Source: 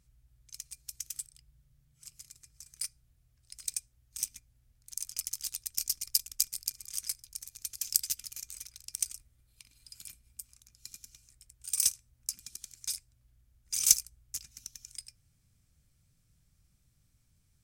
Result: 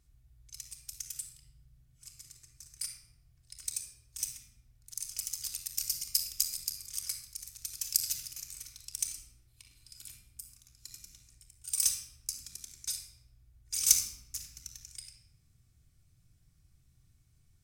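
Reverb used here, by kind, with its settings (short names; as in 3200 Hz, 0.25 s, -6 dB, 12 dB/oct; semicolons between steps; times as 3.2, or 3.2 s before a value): shoebox room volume 3600 m³, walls furnished, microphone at 3.4 m; gain -2.5 dB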